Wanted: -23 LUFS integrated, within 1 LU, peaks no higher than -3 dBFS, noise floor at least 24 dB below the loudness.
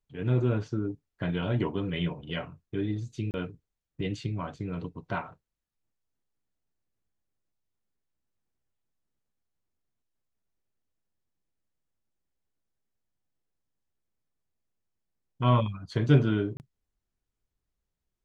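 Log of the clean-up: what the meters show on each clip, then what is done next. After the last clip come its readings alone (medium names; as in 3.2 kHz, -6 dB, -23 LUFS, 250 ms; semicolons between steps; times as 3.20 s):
dropouts 2; longest dropout 29 ms; loudness -30.0 LUFS; peak level -8.5 dBFS; loudness target -23.0 LUFS
-> interpolate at 3.31/16.57 s, 29 ms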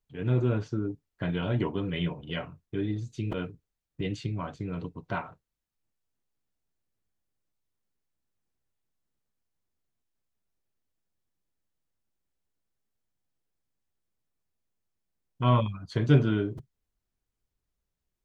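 dropouts 0; loudness -30.0 LUFS; peak level -8.5 dBFS; loudness target -23.0 LUFS
-> trim +7 dB; peak limiter -3 dBFS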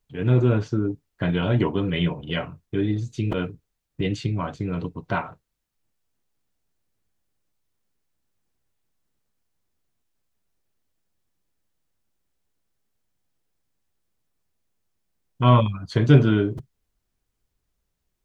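loudness -23.0 LUFS; peak level -3.0 dBFS; noise floor -78 dBFS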